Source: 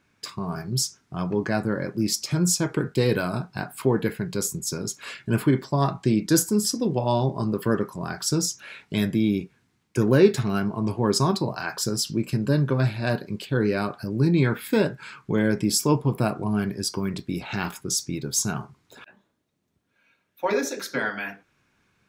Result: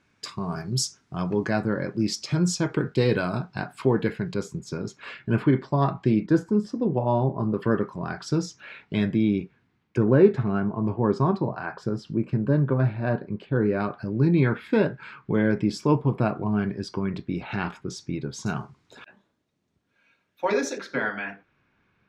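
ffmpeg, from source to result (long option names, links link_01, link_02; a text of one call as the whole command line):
ffmpeg -i in.wav -af "asetnsamples=nb_out_samples=441:pad=0,asendcmd='1.51 lowpass f 4800;4.34 lowpass f 2800;6.26 lowpass f 1500;7.54 lowpass f 3000;9.98 lowpass f 1500;13.8 lowpass f 2700;18.46 lowpass f 6900;20.78 lowpass f 2900',lowpass=8100" out.wav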